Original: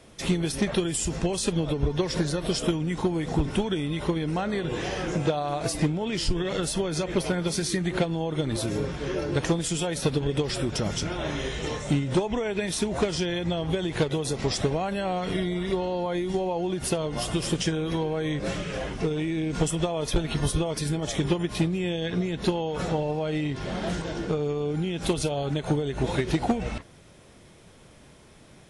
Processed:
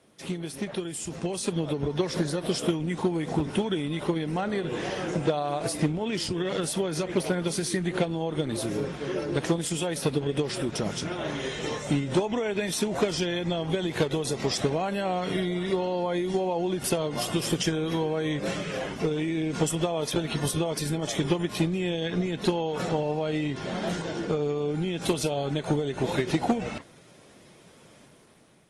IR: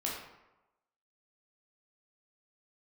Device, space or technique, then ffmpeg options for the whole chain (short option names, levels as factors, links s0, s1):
video call: -af "highpass=140,dynaudnorm=f=880:g=3:m=2.51,volume=0.447" -ar 48000 -c:a libopus -b:a 24k